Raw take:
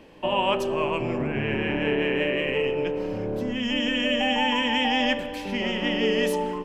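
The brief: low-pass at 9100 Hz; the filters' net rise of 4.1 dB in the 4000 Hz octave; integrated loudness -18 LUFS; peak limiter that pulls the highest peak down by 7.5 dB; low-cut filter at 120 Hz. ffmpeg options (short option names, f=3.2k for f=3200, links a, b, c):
-af "highpass=120,lowpass=9.1k,equalizer=f=4k:t=o:g=6.5,volume=8dB,alimiter=limit=-8.5dB:level=0:latency=1"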